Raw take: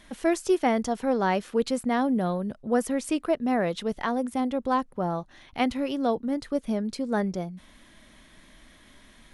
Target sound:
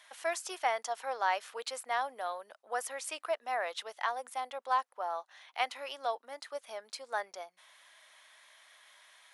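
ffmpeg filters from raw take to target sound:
-af "highpass=f=700:w=0.5412,highpass=f=700:w=1.3066,volume=-2.5dB"

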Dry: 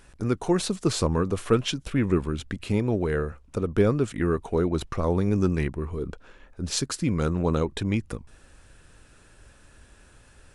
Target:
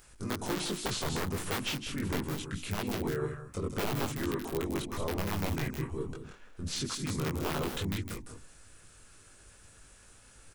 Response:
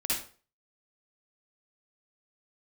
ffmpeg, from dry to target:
-filter_complex "[0:a]aeval=exprs='(mod(5.01*val(0)+1,2)-1)/5.01':c=same,asplit=2[a][b];[b]adelay=20,volume=-2.5dB[c];[a][c]amix=inputs=2:normalize=0,alimiter=limit=-18.5dB:level=0:latency=1:release=13,bandreject=f=60:t=h:w=6,bandreject=f=120:t=h:w=6,bandreject=f=180:t=h:w=6,bandreject=f=240:t=h:w=6,bandreject=f=300:t=h:w=6,bandreject=f=360:t=h:w=6,aecho=1:1:159|187:0.316|0.299,acrossover=split=4600[d][e];[e]acompressor=threshold=-41dB:ratio=4:attack=1:release=60[f];[d][f]amix=inputs=2:normalize=0,aemphasis=mode=production:type=50kf,asplit=2[g][h];[h]asetrate=37084,aresample=44100,atempo=1.18921,volume=-3dB[i];[g][i]amix=inputs=2:normalize=0,volume=-9dB"

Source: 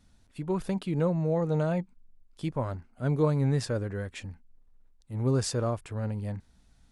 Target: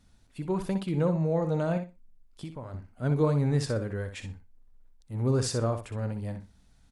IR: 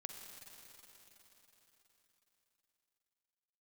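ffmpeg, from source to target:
-filter_complex "[0:a]asettb=1/sr,asplit=3[a][b][c];[a]atrim=end=1.774[d];[b]atrim=start=1.77:end=2.74,asetpts=PTS-STARTPTS,afade=t=in:d=0.004:c=qsin,afade=t=out:st=0.966:d=0.004:c=qsin,acompressor=threshold=-37dB:ratio=6[e];[c]atrim=start=2.736[f];[d][e]acrossfade=d=0.004:c1=hsin:c2=qsin[g];[g][f]acrossfade=d=0.004:c1=qsin:c2=hsin,asplit=2[h][i];[i]aecho=0:1:62|124|186:0.355|0.0603|0.0103[j];[h][j]amix=inputs=2:normalize=0"

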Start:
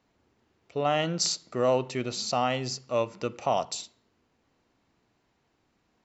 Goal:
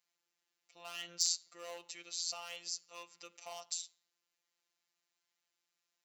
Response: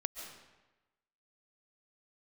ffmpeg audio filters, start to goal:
-af "volume=17.5dB,asoftclip=hard,volume=-17.5dB,aderivative,afftfilt=real='hypot(re,im)*cos(PI*b)':imag='0':win_size=1024:overlap=0.75,volume=1dB"

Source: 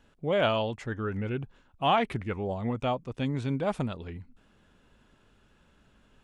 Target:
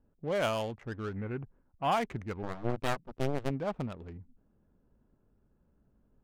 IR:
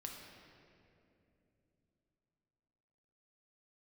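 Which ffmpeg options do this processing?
-filter_complex "[0:a]asplit=3[a][b][c];[a]afade=t=out:st=2.42:d=0.02[d];[b]aeval=exprs='0.15*(cos(1*acos(clip(val(0)/0.15,-1,1)))-cos(1*PI/2))+0.0211*(cos(3*acos(clip(val(0)/0.15,-1,1)))-cos(3*PI/2))+0.0596*(cos(4*acos(clip(val(0)/0.15,-1,1)))-cos(4*PI/2))+0.00473*(cos(5*acos(clip(val(0)/0.15,-1,1)))-cos(5*PI/2))+0.0299*(cos(7*acos(clip(val(0)/0.15,-1,1)))-cos(7*PI/2))':c=same,afade=t=in:st=2.42:d=0.02,afade=t=out:st=3.49:d=0.02[e];[c]afade=t=in:st=3.49:d=0.02[f];[d][e][f]amix=inputs=3:normalize=0,adynamicsmooth=sensitivity=7:basefreq=610,asplit=3[g][h][i];[g]afade=t=out:st=1.15:d=0.02[j];[h]highshelf=f=3.3k:t=q:w=1.5:g=-14,afade=t=in:st=1.15:d=0.02,afade=t=out:st=1.91:d=0.02[k];[i]afade=t=in:st=1.91:d=0.02[l];[j][k][l]amix=inputs=3:normalize=0,volume=-5dB"

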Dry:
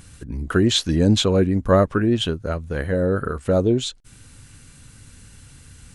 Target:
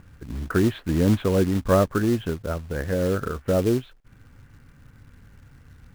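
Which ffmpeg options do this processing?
-af "lowpass=f=2k:w=0.5412,lowpass=f=2k:w=1.3066,acrusher=bits=4:mode=log:mix=0:aa=0.000001,volume=-3dB"

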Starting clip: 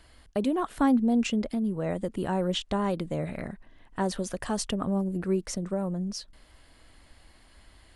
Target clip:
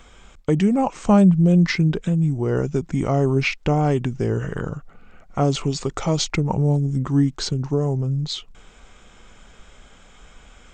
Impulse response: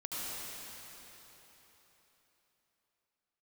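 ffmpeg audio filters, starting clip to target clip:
-af "asetrate=32667,aresample=44100,volume=8.5dB"

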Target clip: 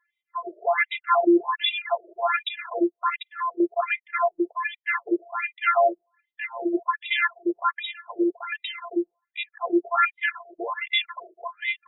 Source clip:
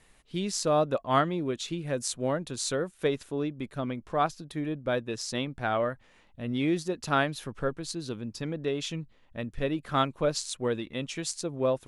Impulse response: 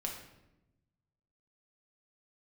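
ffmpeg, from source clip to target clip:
-filter_complex "[0:a]afftfilt=real='hypot(re,im)*cos(PI*b)':imag='0':win_size=512:overlap=0.75,anlmdn=0.0158,aeval=exprs='0.251*(cos(1*acos(clip(val(0)/0.251,-1,1)))-cos(1*PI/2))+0.00355*(cos(2*acos(clip(val(0)/0.251,-1,1)))-cos(2*PI/2))+0.0282*(cos(4*acos(clip(val(0)/0.251,-1,1)))-cos(4*PI/2))':c=same,asplit=2[a][b];[b]aeval=exprs='0.251*sin(PI/2*7.94*val(0)/0.251)':c=same,volume=-7dB[c];[a][c]amix=inputs=2:normalize=0,equalizer=f=180:t=o:w=3:g=-12,bandreject=f=2.8k:w=16,acrossover=split=3000[d][e];[e]acompressor=threshold=-32dB:ratio=4:attack=1:release=60[f];[d][f]amix=inputs=2:normalize=0,alimiter=level_in=26.5dB:limit=-1dB:release=50:level=0:latency=1,afftfilt=real='re*between(b*sr/1024,450*pow(2800/450,0.5+0.5*sin(2*PI*1.3*pts/sr))/1.41,450*pow(2800/450,0.5+0.5*sin(2*PI*1.3*pts/sr))*1.41)':imag='im*between(b*sr/1024,450*pow(2800/450,0.5+0.5*sin(2*PI*1.3*pts/sr))/1.41,450*pow(2800/450,0.5+0.5*sin(2*PI*1.3*pts/sr))*1.41)':win_size=1024:overlap=0.75,volume=-8dB"

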